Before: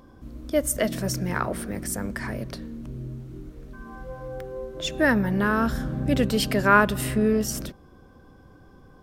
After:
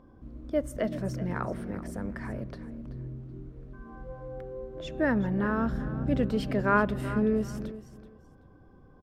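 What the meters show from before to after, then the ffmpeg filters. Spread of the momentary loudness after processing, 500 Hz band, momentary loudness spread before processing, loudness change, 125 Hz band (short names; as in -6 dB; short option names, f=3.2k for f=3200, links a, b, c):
19 LU, -5.0 dB, 20 LU, -6.0 dB, -4.0 dB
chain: -filter_complex "[0:a]lowpass=f=1.1k:p=1,asplit=2[a][b];[b]aecho=0:1:380|760:0.188|0.0433[c];[a][c]amix=inputs=2:normalize=0,volume=-4dB"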